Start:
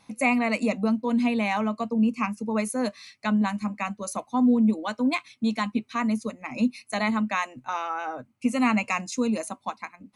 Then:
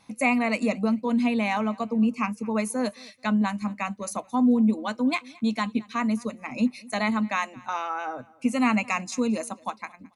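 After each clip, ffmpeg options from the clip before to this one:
ffmpeg -i in.wav -af "aecho=1:1:218|436:0.0631|0.0164" out.wav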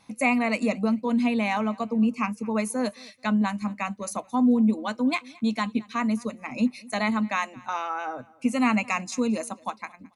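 ffmpeg -i in.wav -af anull out.wav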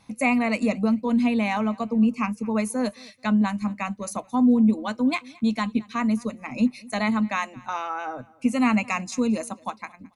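ffmpeg -i in.wav -af "lowshelf=frequency=130:gain=9.5" out.wav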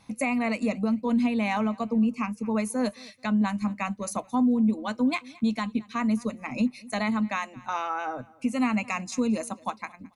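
ffmpeg -i in.wav -af "alimiter=limit=-16.5dB:level=0:latency=1:release=396" out.wav

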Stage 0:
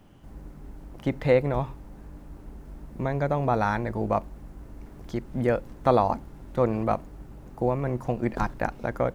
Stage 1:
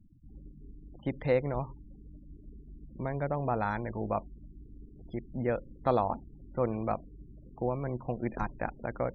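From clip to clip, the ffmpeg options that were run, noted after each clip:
ffmpeg -i in.wav -af "afftfilt=real='re*gte(hypot(re,im),0.0112)':imag='im*gte(hypot(re,im),0.0112)':win_size=1024:overlap=0.75,areverse,acompressor=mode=upward:threshold=-41dB:ratio=2.5,areverse,volume=-6.5dB" out.wav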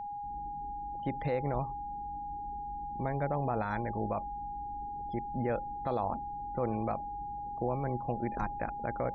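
ffmpeg -i in.wav -af "alimiter=limit=-23dB:level=0:latency=1:release=36,aeval=exprs='val(0)+0.0141*sin(2*PI*820*n/s)':channel_layout=same" out.wav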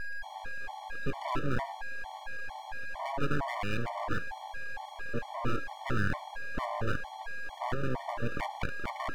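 ffmpeg -i in.wav -af "aeval=exprs='abs(val(0))':channel_layout=same,afftfilt=real='re*gt(sin(2*PI*2.2*pts/sr)*(1-2*mod(floor(b*sr/1024/590),2)),0)':imag='im*gt(sin(2*PI*2.2*pts/sr)*(1-2*mod(floor(b*sr/1024/590),2)),0)':win_size=1024:overlap=0.75,volume=6dB" out.wav

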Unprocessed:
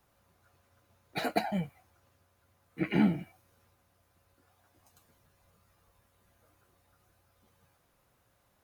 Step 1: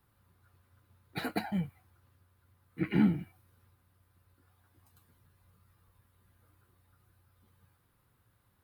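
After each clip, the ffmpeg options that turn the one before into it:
ffmpeg -i in.wav -af "equalizer=frequency=100:width_type=o:width=0.67:gain=7,equalizer=frequency=630:width_type=o:width=0.67:gain=-11,equalizer=frequency=2500:width_type=o:width=0.67:gain=-4,equalizer=frequency=6300:width_type=o:width=0.67:gain=-11" out.wav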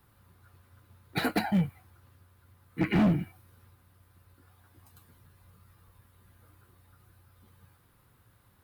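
ffmpeg -i in.wav -af "asoftclip=type=hard:threshold=-27.5dB,volume=7.5dB" out.wav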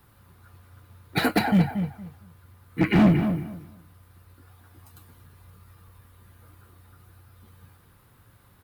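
ffmpeg -i in.wav -filter_complex "[0:a]asplit=2[link_01][link_02];[link_02]adelay=231,lowpass=frequency=2400:poles=1,volume=-8dB,asplit=2[link_03][link_04];[link_04]adelay=231,lowpass=frequency=2400:poles=1,volume=0.21,asplit=2[link_05][link_06];[link_06]adelay=231,lowpass=frequency=2400:poles=1,volume=0.21[link_07];[link_01][link_03][link_05][link_07]amix=inputs=4:normalize=0,volume=6dB" out.wav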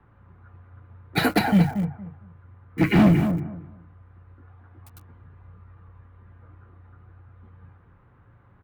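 ffmpeg -i in.wav -filter_complex "[0:a]acrossover=split=180|2200[link_01][link_02][link_03];[link_01]asplit=2[link_04][link_05];[link_05]adelay=35,volume=-5.5dB[link_06];[link_04][link_06]amix=inputs=2:normalize=0[link_07];[link_03]acrusher=bits=7:mix=0:aa=0.000001[link_08];[link_07][link_02][link_08]amix=inputs=3:normalize=0,volume=1.5dB" out.wav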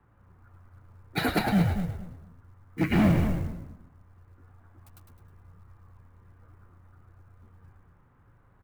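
ffmpeg -i in.wav -filter_complex "[0:a]asplit=6[link_01][link_02][link_03][link_04][link_05][link_06];[link_02]adelay=105,afreqshift=-86,volume=-5.5dB[link_07];[link_03]adelay=210,afreqshift=-172,volume=-13dB[link_08];[link_04]adelay=315,afreqshift=-258,volume=-20.6dB[link_09];[link_05]adelay=420,afreqshift=-344,volume=-28.1dB[link_10];[link_06]adelay=525,afreqshift=-430,volume=-35.6dB[link_11];[link_01][link_07][link_08][link_09][link_10][link_11]amix=inputs=6:normalize=0,acrusher=bits=8:mode=log:mix=0:aa=0.000001,volume=-6dB" out.wav

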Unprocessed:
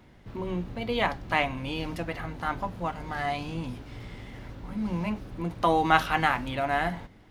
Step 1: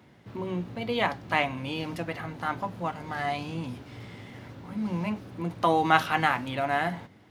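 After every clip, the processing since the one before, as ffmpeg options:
ffmpeg -i in.wav -af "highpass=frequency=89:width=0.5412,highpass=frequency=89:width=1.3066" out.wav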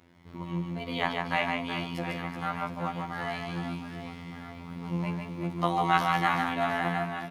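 ffmpeg -i in.wav -af "afftfilt=real='hypot(re,im)*cos(PI*b)':imag='0':win_size=2048:overlap=0.75,aecho=1:1:150|375|712.5|1219|1978:0.631|0.398|0.251|0.158|0.1" out.wav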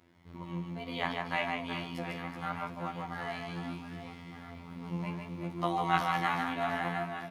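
ffmpeg -i in.wav -af "flanger=delay=8.5:depth=7.8:regen=69:speed=0.71:shape=sinusoidal" out.wav

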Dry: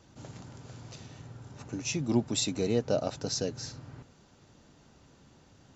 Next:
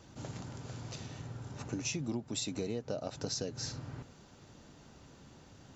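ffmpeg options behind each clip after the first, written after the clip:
ffmpeg -i in.wav -af "acompressor=threshold=-35dB:ratio=20,volume=2.5dB" out.wav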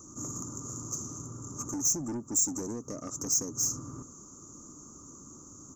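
ffmpeg -i in.wav -af "firequalizer=gain_entry='entry(130,0);entry(310,10);entry(450,0);entry(780,-9);entry(1200,13);entry(1700,-25);entry(2800,-24);entry(4100,-19);entry(6600,12);entry(9700,-7)':delay=0.05:min_phase=1,asoftclip=type=tanh:threshold=-31dB,aexciter=amount=5.2:drive=2.1:freq=5400" out.wav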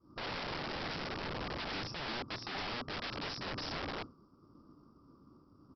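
ffmpeg -i in.wav -af "agate=range=-33dB:threshold=-37dB:ratio=3:detection=peak,acompressor=threshold=-41dB:ratio=1.5,aresample=11025,aeval=exprs='(mod(178*val(0)+1,2)-1)/178':channel_layout=same,aresample=44100,volume=10dB" out.wav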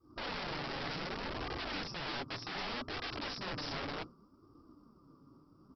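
ffmpeg -i in.wav -af "flanger=delay=2.5:depth=4.8:regen=-28:speed=0.66:shape=sinusoidal,volume=3.5dB" out.wav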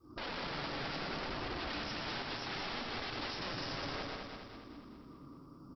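ffmpeg -i in.wav -filter_complex "[0:a]asplit=2[link_01][link_02];[link_02]aecho=0:1:118:0.531[link_03];[link_01][link_03]amix=inputs=2:normalize=0,alimiter=level_in=14dB:limit=-24dB:level=0:latency=1:release=239,volume=-14dB,asplit=2[link_04][link_05];[link_05]aecho=0:1:205|410|615|820|1025|1230|1435:0.596|0.316|0.167|0.0887|0.047|0.0249|0.0132[link_06];[link_04][link_06]amix=inputs=2:normalize=0,volume=5dB" out.wav

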